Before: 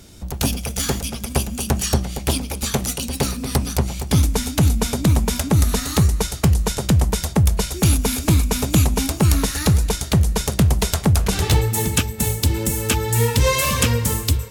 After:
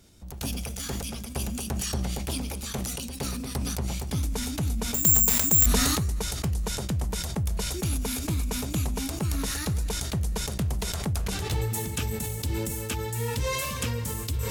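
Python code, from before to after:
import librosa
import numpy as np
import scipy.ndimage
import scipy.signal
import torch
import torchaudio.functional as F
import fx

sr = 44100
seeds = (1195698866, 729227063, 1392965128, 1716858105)

y = fx.resample_bad(x, sr, factor=6, down='none', up='zero_stuff', at=(4.94, 5.66))
y = fx.sustainer(y, sr, db_per_s=20.0)
y = y * 10.0 ** (-13.0 / 20.0)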